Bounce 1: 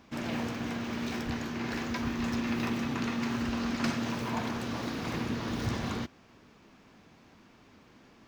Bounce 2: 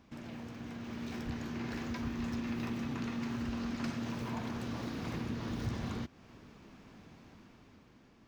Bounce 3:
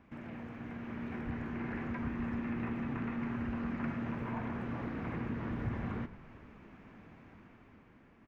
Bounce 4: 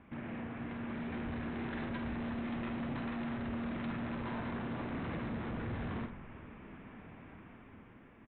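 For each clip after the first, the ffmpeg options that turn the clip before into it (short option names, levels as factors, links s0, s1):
-af "acompressor=threshold=0.00631:ratio=2,lowshelf=f=250:g=7,dynaudnorm=f=150:g=13:m=2.24,volume=0.422"
-filter_complex "[0:a]acrossover=split=2600[s0][s1];[s1]acompressor=threshold=0.00112:ratio=4:attack=1:release=60[s2];[s0][s2]amix=inputs=2:normalize=0,highshelf=f=3100:t=q:w=1.5:g=-12,asplit=8[s3][s4][s5][s6][s7][s8][s9][s10];[s4]adelay=112,afreqshift=-40,volume=0.188[s11];[s5]adelay=224,afreqshift=-80,volume=0.12[s12];[s6]adelay=336,afreqshift=-120,volume=0.0767[s13];[s7]adelay=448,afreqshift=-160,volume=0.0495[s14];[s8]adelay=560,afreqshift=-200,volume=0.0316[s15];[s9]adelay=672,afreqshift=-240,volume=0.0202[s16];[s10]adelay=784,afreqshift=-280,volume=0.0129[s17];[s3][s11][s12][s13][s14][s15][s16][s17]amix=inputs=8:normalize=0"
-filter_complex "[0:a]aresample=8000,asoftclip=type=hard:threshold=0.01,aresample=44100,asplit=2[s0][s1];[s1]adelay=48,volume=0.422[s2];[s0][s2]amix=inputs=2:normalize=0,volume=1.41"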